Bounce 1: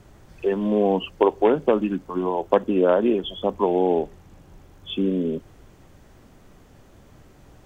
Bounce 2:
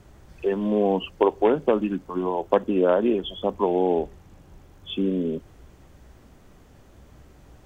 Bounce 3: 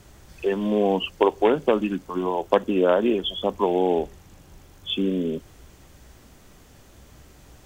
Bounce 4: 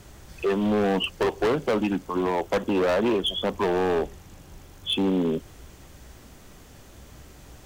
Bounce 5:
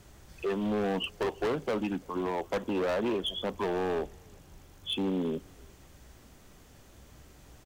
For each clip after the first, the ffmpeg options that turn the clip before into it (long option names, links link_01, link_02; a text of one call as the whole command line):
ffmpeg -i in.wav -af "equalizer=frequency=63:width=7.5:gain=11.5,volume=-1.5dB" out.wav
ffmpeg -i in.wav -af "highshelf=frequency=2300:gain=10" out.wav
ffmpeg -i in.wav -af "asoftclip=type=hard:threshold=-22dB,volume=2.5dB" out.wav
ffmpeg -i in.wav -filter_complex "[0:a]asplit=2[link_01][link_02];[link_02]adelay=340,highpass=300,lowpass=3400,asoftclip=type=hard:threshold=-27.5dB,volume=-23dB[link_03];[link_01][link_03]amix=inputs=2:normalize=0,volume=-7dB" out.wav